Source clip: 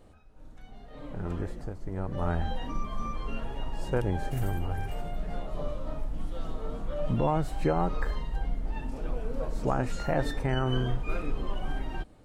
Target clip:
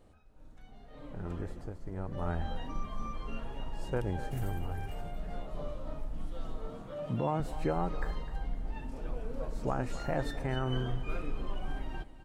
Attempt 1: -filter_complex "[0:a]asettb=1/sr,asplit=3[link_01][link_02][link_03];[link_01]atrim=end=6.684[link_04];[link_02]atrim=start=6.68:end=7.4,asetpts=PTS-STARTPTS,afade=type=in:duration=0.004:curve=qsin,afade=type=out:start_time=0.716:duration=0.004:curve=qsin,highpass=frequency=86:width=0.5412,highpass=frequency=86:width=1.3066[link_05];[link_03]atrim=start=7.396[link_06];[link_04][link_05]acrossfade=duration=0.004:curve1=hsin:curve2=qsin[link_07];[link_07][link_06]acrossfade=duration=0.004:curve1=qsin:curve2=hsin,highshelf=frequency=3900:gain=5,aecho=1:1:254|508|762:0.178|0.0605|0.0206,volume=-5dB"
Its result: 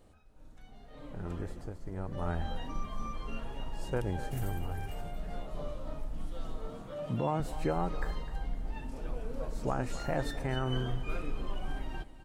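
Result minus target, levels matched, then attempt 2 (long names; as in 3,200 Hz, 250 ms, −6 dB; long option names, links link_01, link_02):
8,000 Hz band +4.0 dB
-filter_complex "[0:a]asettb=1/sr,asplit=3[link_01][link_02][link_03];[link_01]atrim=end=6.684[link_04];[link_02]atrim=start=6.68:end=7.4,asetpts=PTS-STARTPTS,afade=type=in:duration=0.004:curve=qsin,afade=type=out:start_time=0.716:duration=0.004:curve=qsin,highpass=frequency=86:width=0.5412,highpass=frequency=86:width=1.3066[link_05];[link_03]atrim=start=7.396[link_06];[link_04][link_05]acrossfade=duration=0.004:curve1=hsin:curve2=qsin[link_07];[link_07][link_06]acrossfade=duration=0.004:curve1=qsin:curve2=hsin,aecho=1:1:254|508|762:0.178|0.0605|0.0206,volume=-5dB"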